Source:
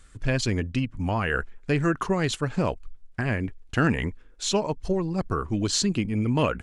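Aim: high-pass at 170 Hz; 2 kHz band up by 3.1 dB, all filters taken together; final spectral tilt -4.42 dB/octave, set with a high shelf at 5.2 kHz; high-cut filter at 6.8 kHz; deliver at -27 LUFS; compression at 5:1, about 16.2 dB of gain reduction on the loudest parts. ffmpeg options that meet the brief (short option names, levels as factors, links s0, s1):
-af "highpass=170,lowpass=6800,equalizer=f=2000:t=o:g=4.5,highshelf=f=5200:g=-3,acompressor=threshold=0.0141:ratio=5,volume=4.73"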